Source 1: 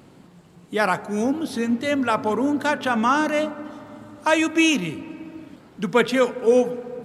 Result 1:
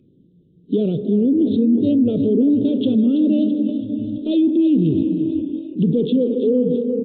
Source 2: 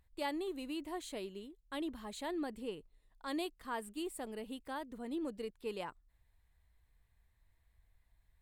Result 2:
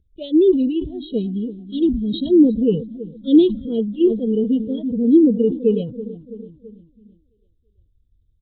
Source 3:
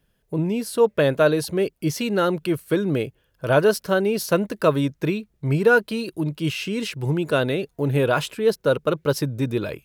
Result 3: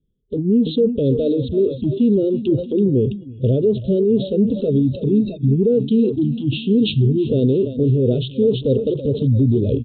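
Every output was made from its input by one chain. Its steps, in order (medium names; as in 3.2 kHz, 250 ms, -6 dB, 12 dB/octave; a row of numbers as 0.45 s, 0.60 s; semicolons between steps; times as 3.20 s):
block-companded coder 5-bit; compression 5:1, threshold -20 dBFS; inverse Chebyshev band-stop 800–2200 Hz, stop band 50 dB; treble shelf 2.8 kHz -5 dB; low-pass that closes with the level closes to 1.7 kHz, closed at -22.5 dBFS; peak limiter -27 dBFS; on a send: feedback delay 331 ms, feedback 58%, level -12 dB; on the sum: resampled via 8 kHz; spectral noise reduction 21 dB; decay stretcher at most 120 dB/s; normalise loudness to -18 LUFS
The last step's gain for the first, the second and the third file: +16.5 dB, +28.5 dB, +18.5 dB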